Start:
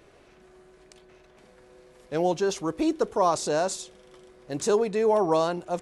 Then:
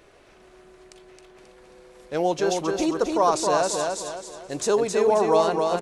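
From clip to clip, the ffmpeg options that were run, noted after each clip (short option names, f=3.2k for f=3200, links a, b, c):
-filter_complex "[0:a]equalizer=f=150:w=0.51:g=-5,asplit=2[a][b];[b]aecho=0:1:268|536|804|1072|1340:0.631|0.252|0.101|0.0404|0.0162[c];[a][c]amix=inputs=2:normalize=0,volume=3dB"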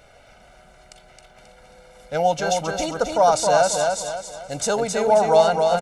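-af "aecho=1:1:1.4:0.87,volume=1.5dB"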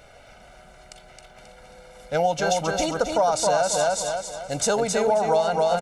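-af "acompressor=threshold=-19dB:ratio=6,volume=1.5dB"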